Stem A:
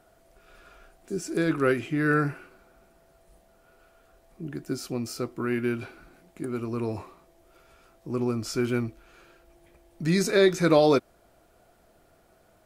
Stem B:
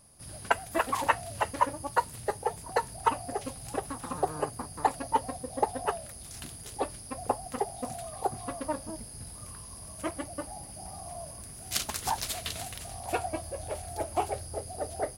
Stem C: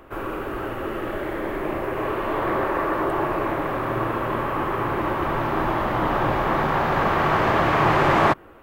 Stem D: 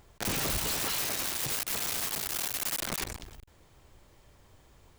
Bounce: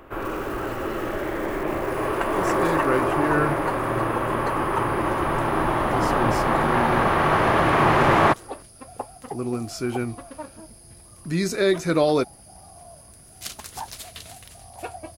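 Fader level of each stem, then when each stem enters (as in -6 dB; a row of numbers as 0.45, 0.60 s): -0.5, -4.0, +0.5, -18.5 dB; 1.25, 1.70, 0.00, 0.00 s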